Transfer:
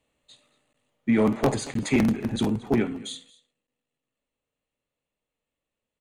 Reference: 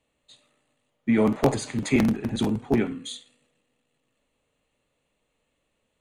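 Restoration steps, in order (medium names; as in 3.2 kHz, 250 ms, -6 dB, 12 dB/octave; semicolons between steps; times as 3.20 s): clip repair -13.5 dBFS; interpolate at 0.73/1.74/3.67 s, 13 ms; inverse comb 226 ms -21 dB; gain correction +12 dB, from 3.30 s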